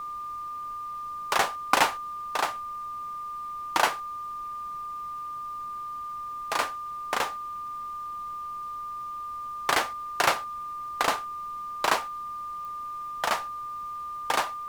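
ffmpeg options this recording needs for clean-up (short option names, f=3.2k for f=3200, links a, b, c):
-af "adeclick=t=4,bandreject=f=1.2k:w=30,agate=range=-21dB:threshold=-28dB"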